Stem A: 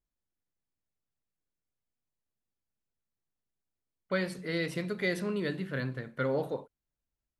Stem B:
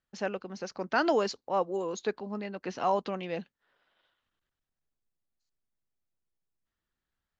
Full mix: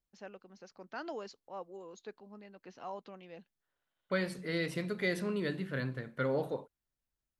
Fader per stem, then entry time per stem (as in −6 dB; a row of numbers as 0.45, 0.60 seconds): −2.0, −15.5 decibels; 0.00, 0.00 seconds